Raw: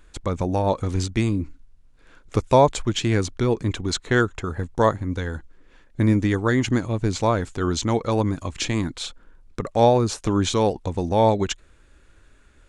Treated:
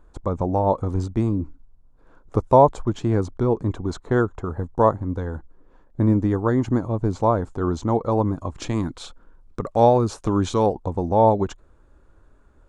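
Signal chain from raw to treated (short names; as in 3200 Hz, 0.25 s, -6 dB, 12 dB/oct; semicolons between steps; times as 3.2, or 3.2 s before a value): resonant high shelf 1500 Hz -13.5 dB, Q 1.5, from 8.62 s -7 dB, from 10.66 s -12.5 dB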